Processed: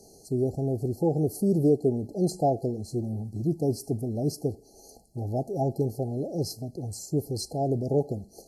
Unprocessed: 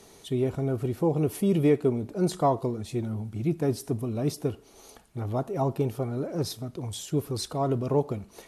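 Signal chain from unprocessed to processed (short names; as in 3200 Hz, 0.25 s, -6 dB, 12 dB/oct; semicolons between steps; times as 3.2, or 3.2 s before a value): FFT band-reject 840–4100 Hz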